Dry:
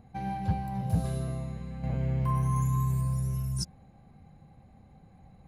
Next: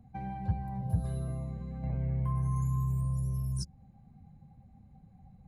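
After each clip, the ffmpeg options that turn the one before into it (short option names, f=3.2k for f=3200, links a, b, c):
-filter_complex "[0:a]afftdn=nr=12:nf=-50,acrossover=split=130[a][b];[b]acompressor=threshold=-40dB:ratio=3[c];[a][c]amix=inputs=2:normalize=0"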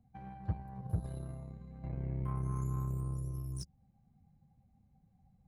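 -af "aeval=exprs='0.126*(cos(1*acos(clip(val(0)/0.126,-1,1)))-cos(1*PI/2))+0.01*(cos(7*acos(clip(val(0)/0.126,-1,1)))-cos(7*PI/2))':c=same,volume=-4.5dB"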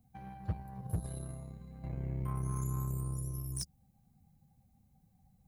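-af "crystalizer=i=2.5:c=0,aeval=exprs='0.0531*(abs(mod(val(0)/0.0531+3,4)-2)-1)':c=same"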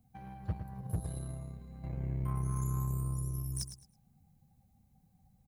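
-af "aecho=1:1:108|216|324:0.299|0.0687|0.0158"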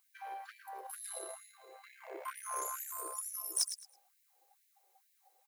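-af "asoftclip=type=hard:threshold=-27dB,afftfilt=real='re*gte(b*sr/1024,340*pow(1700/340,0.5+0.5*sin(2*PI*2.2*pts/sr)))':imag='im*gte(b*sr/1024,340*pow(1700/340,0.5+0.5*sin(2*PI*2.2*pts/sr)))':win_size=1024:overlap=0.75,volume=9dB"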